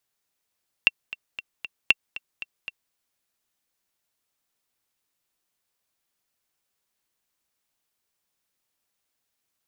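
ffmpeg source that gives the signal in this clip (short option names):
-f lavfi -i "aevalsrc='pow(10,(-2.5-17.5*gte(mod(t,4*60/232),60/232))/20)*sin(2*PI*2720*mod(t,60/232))*exp(-6.91*mod(t,60/232)/0.03)':d=2.06:s=44100"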